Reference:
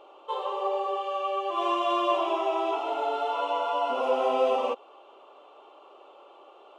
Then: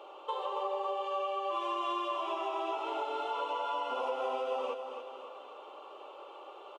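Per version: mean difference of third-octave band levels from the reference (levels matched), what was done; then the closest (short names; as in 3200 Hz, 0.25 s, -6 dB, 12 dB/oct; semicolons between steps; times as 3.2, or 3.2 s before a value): 3.5 dB: HPF 340 Hz 12 dB/oct; notch 690 Hz, Q 12; compressor 6:1, threshold -36 dBFS, peak gain reduction 15 dB; on a send: feedback echo 0.275 s, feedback 50%, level -8.5 dB; on the sum: gain +3 dB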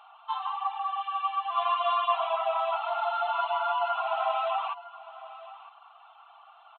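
7.5 dB: reverb removal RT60 0.54 s; FFT band-pass 640–4300 Hz; bell 1400 Hz +8 dB 0.49 oct; echo 0.957 s -17 dB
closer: first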